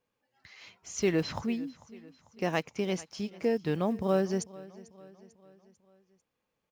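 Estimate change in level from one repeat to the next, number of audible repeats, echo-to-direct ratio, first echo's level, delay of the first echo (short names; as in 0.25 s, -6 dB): -6.0 dB, 3, -18.5 dB, -20.0 dB, 0.445 s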